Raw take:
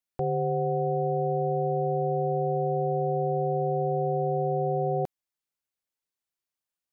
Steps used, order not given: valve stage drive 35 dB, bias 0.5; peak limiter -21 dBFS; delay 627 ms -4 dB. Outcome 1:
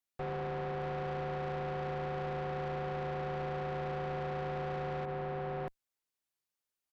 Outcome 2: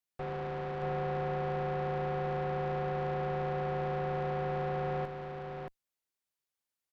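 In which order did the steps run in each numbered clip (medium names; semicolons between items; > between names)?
delay > peak limiter > valve stage; peak limiter > valve stage > delay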